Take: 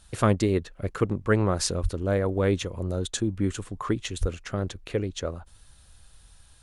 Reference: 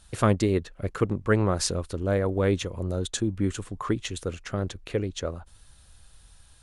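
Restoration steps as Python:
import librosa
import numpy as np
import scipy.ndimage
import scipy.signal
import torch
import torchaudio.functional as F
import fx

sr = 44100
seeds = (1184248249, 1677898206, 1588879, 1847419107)

y = fx.highpass(x, sr, hz=140.0, slope=24, at=(1.82, 1.94), fade=0.02)
y = fx.highpass(y, sr, hz=140.0, slope=24, at=(4.2, 4.32), fade=0.02)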